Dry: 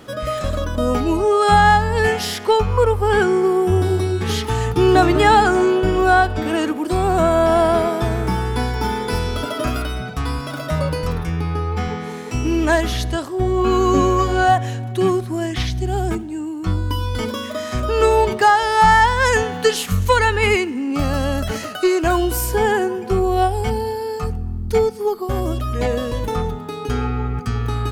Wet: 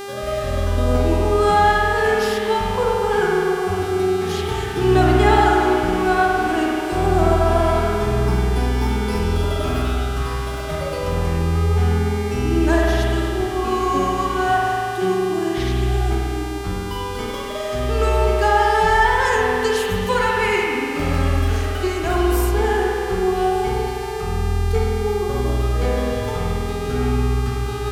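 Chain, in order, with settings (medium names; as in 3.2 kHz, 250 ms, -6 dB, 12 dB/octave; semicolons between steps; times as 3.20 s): spring tank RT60 2.5 s, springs 48 ms, chirp 60 ms, DRR -3 dB; mains buzz 400 Hz, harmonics 36, -25 dBFS -6 dB/octave; trim -6.5 dB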